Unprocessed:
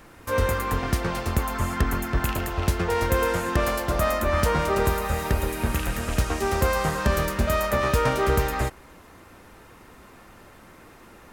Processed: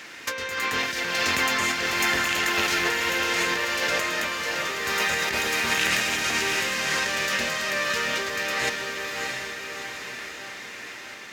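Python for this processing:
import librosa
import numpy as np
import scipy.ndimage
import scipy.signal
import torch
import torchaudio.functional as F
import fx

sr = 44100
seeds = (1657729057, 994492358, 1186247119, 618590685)

p1 = scipy.signal.sosfilt(scipy.signal.bessel(2, 270.0, 'highpass', norm='mag', fs=sr, output='sos'), x)
p2 = fx.band_shelf(p1, sr, hz=3400.0, db=13.5, octaves=2.4)
p3 = fx.over_compress(p2, sr, threshold_db=-26.0, ratio=-1.0)
p4 = fx.tremolo_random(p3, sr, seeds[0], hz=3.5, depth_pct=55)
y = p4 + fx.echo_diffused(p4, sr, ms=657, feedback_pct=54, wet_db=-3, dry=0)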